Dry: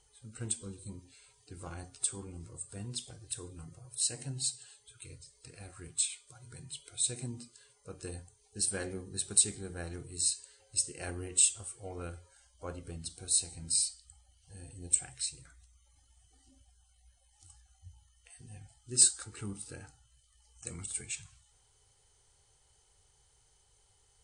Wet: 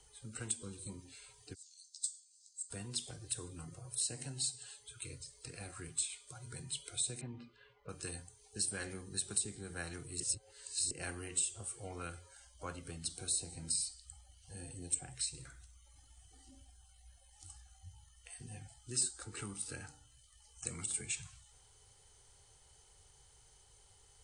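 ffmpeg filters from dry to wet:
-filter_complex "[0:a]asplit=3[a][b][c];[a]afade=t=out:st=1.53:d=0.02[d];[b]asuperpass=centerf=5800:order=8:qfactor=1.4,afade=t=in:st=1.53:d=0.02,afade=t=out:st=2.69:d=0.02[e];[c]afade=t=in:st=2.69:d=0.02[f];[d][e][f]amix=inputs=3:normalize=0,asettb=1/sr,asplit=3[g][h][i];[g]atrim=end=7.214[j];[h]atrim=start=7.21:end=7.89,asetpts=PTS-STARTPTS,afade=t=in:d=0.004:c=qsin,afade=t=out:st=0.676:d=0.004:c=qsin,lowpass=f=2.9k:w=0.5412,lowpass=f=2.9k:w=1.3066[k];[i]atrim=start=7.886[l];[j][k]acrossfade=d=0.004:c1=hsin:c2=qsin[m];[m][l]acrossfade=d=0.004:c1=qsin:c2=hsin,asettb=1/sr,asplit=3[n][o][p];[n]atrim=end=15.284[q];[o]atrim=start=15.28:end=18.43,asetpts=PTS-STARTPTS,afade=t=in:d=0.004:c=qsin,afade=t=out:st=3.146:d=0.004:c=qsin,asplit=2[r][s];[s]adelay=63,lowpass=f=4.7k:p=1,volume=-11dB,asplit=2[t][u];[u]adelay=63,lowpass=f=4.7k:p=1,volume=0.36,asplit=2[v][w];[w]adelay=63,lowpass=f=4.7k:p=1,volume=0.36,asplit=2[x][y];[y]adelay=63,lowpass=f=4.7k:p=1,volume=0.36[z];[r][t][v][x][z]amix=inputs=5:normalize=0,atrim=end_sample=138915[aa];[p]atrim=start=18.426[ab];[q][aa]acrossfade=d=0.004:c1=hsin:c2=qsin[ac];[ac][ab]acrossfade=d=0.004:c1=qsin:c2=hsin,asettb=1/sr,asplit=3[ad][ae][af];[ad]atrim=end=19.814[ag];[ae]atrim=start=19.81:end=21.05,asetpts=PTS-STARTPTS,afade=t=in:d=0.004:c=qsin,afade=t=out:st=1.236:d=0.004:c=qsin,bandreject=f=58.78:t=h:w=4,bandreject=f=117.56:t=h:w=4,bandreject=f=176.34:t=h:w=4,bandreject=f=235.12:t=h:w=4,bandreject=f=293.9:t=h:w=4,bandreject=f=352.68:t=h:w=4,bandreject=f=411.46:t=h:w=4,bandreject=f=470.24:t=h:w=4,bandreject=f=529.02:t=h:w=4,bandreject=f=587.8:t=h:w=4,bandreject=f=646.58:t=h:w=4,bandreject=f=705.36:t=h:w=4,bandreject=f=764.14:t=h:w=4,bandreject=f=822.92:t=h:w=4,bandreject=f=881.7:t=h:w=4,bandreject=f=940.48:t=h:w=4,bandreject=f=999.26:t=h:w=4[ah];[af]atrim=start=21.046[ai];[ag][ah]acrossfade=d=0.004:c1=hsin:c2=qsin[aj];[aj][ai]acrossfade=d=0.004:c1=qsin:c2=hsin,asplit=3[ak][al][am];[ak]atrim=end=10.202[an];[al]atrim=start=10.198:end=10.912,asetpts=PTS-STARTPTS,areverse[ao];[am]atrim=start=10.908[ap];[an][ao]acrossfade=d=0.004:c1=hsin:c2=hsin[aq];[aq][ap]acrossfade=d=0.004:c1=hsin:c2=hsin,acrossover=split=130|270|910[ar][as][at][au];[ar]acompressor=threshold=-58dB:ratio=4[av];[as]acompressor=threshold=-55dB:ratio=4[aw];[at]acompressor=threshold=-57dB:ratio=4[ax];[au]acompressor=threshold=-39dB:ratio=4[ay];[av][aw][ax][ay]amix=inputs=4:normalize=0,volume=4dB"

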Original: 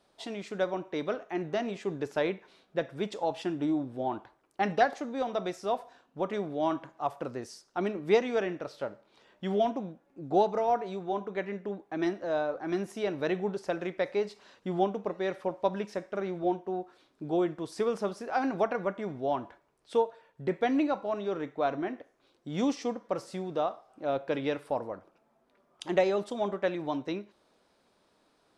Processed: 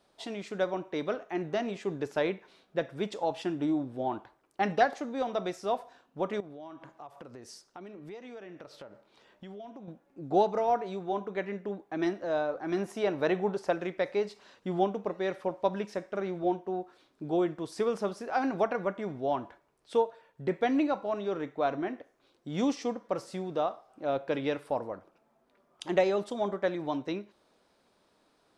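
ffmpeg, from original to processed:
-filter_complex "[0:a]asettb=1/sr,asplit=3[a][b][c];[a]atrim=end=6.404[d];[b]atrim=start=6.4:end=9.88,asetpts=PTS-STARTPTS,afade=t=in:d=0.004:c=qsin,afade=t=out:st=3.476:d=0.004:c=qsin,acompressor=threshold=-43dB:ratio=6:attack=3.2:release=140:knee=1:detection=peak[e];[c]atrim=start=9.876[f];[d][e]acrossfade=d=0.004:c1=hsin:c2=qsin[g];[g][f]acrossfade=d=0.004:c1=qsin:c2=hsin,asettb=1/sr,asplit=3[h][i][j];[h]atrim=end=12.774[k];[i]atrim=start=12.77:end=13.73,asetpts=PTS-STARTPTS,afade=t=in:d=0.004:c=qsin,afade=t=out:st=0.956:d=0.004:c=qsin,equalizer=f=880:w=0.74:g=5[l];[j]atrim=start=13.726[m];[k][l]acrossfade=d=0.004:c1=hsin:c2=qsin[n];[n][m]acrossfade=d=0.004:c1=qsin:c2=hsin,asettb=1/sr,asplit=3[o][p][q];[o]atrim=end=26.344[r];[p]atrim=start=26.34:end=26.82,asetpts=PTS-STARTPTS,afade=t=in:d=0.004:c=qsin,afade=t=out:st=0.476:d=0.004:c=qsin,equalizer=f=2.7k:t=o:w=0.21:g=-9.5[s];[q]atrim=start=26.816[t];[r][s]acrossfade=d=0.004:c1=hsin:c2=qsin[u];[u][t]acrossfade=d=0.004:c1=qsin:c2=hsin"

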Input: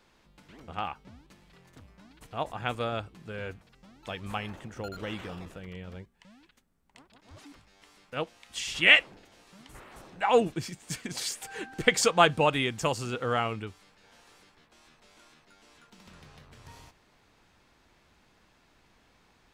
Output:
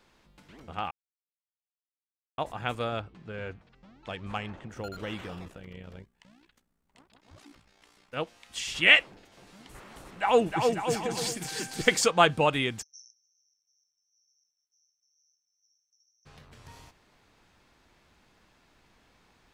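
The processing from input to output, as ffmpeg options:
-filter_complex "[0:a]asettb=1/sr,asplit=3[a][b][c];[a]atrim=end=2.994[d];[b]atrim=start=2.99:end=4.7,asetpts=PTS-STARTPTS,afade=t=in:d=0.004:c=qsin,afade=t=out:st=1.706:d=0.004:c=qsin,adynamicsmooth=sensitivity=5:basefreq=4.4k[e];[c]atrim=start=4.696[f];[d][e]acrossfade=d=0.004:c1=hsin:c2=qsin[g];[g][f]acrossfade=d=0.004:c1=qsin:c2=hsin,asettb=1/sr,asplit=3[h][i][j];[h]atrim=end=5.484[k];[i]atrim=start=5.48:end=8.14,asetpts=PTS-STARTPTS,afade=t=in:d=0.004:c=qsin,afade=t=out:st=2.656:d=0.004:c=qsin,tremolo=f=61:d=0.667[l];[j]atrim=start=8.136[m];[k][l]acrossfade=d=0.004:c1=hsin:c2=qsin[n];[n][m]acrossfade=d=0.004:c1=qsin:c2=hsin,asettb=1/sr,asplit=3[o][p][q];[o]atrim=end=9.064[r];[p]atrim=start=9.06:end=12.02,asetpts=PTS-STARTPTS,afade=t=in:d=0.004:c=qsin,afade=t=out:st=2.956:d=0.004:c=qsin,aecho=1:1:310|542.5|716.9|847.7|945.7:0.631|0.398|0.251|0.158|0.1,atrim=end_sample=130536[s];[q]atrim=start=12.016[t];[r][s]acrossfade=d=0.004:c1=hsin:c2=qsin[u];[u][t]acrossfade=d=0.004:c1=qsin:c2=hsin,asplit=3[v][w][x];[v]afade=t=out:st=12.81:d=0.02[y];[w]asuperpass=centerf=5800:order=20:qfactor=6.3,afade=t=in:st=12.81:d=0.02,afade=t=out:st=16.25:d=0.02[z];[x]afade=t=in:st=16.25:d=0.02[aa];[y][z][aa]amix=inputs=3:normalize=0,asplit=3[ab][ac][ad];[ab]atrim=end=0.91,asetpts=PTS-STARTPTS,afade=t=out:st=0.906:d=0.004:c=hsin[ae];[ac]atrim=start=0.91:end=2.38,asetpts=PTS-STARTPTS,volume=0[af];[ad]atrim=start=2.38,asetpts=PTS-STARTPTS,afade=t=in:d=0.004:c=hsin[ag];[ae][af][ag]concat=n=3:v=0:a=1"

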